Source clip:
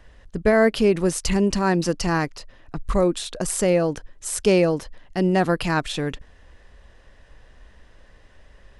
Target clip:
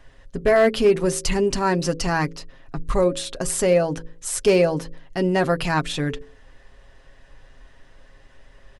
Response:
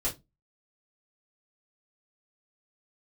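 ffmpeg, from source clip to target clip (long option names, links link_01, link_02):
-af "aecho=1:1:7.4:0.52,bandreject=frequency=54.76:width_type=h:width=4,bandreject=frequency=109.52:width_type=h:width=4,bandreject=frequency=164.28:width_type=h:width=4,bandreject=frequency=219.04:width_type=h:width=4,bandreject=frequency=273.8:width_type=h:width=4,bandreject=frequency=328.56:width_type=h:width=4,bandreject=frequency=383.32:width_type=h:width=4,bandreject=frequency=438.08:width_type=h:width=4,bandreject=frequency=492.84:width_type=h:width=4,bandreject=frequency=547.6:width_type=h:width=4,asoftclip=type=hard:threshold=-9.5dB"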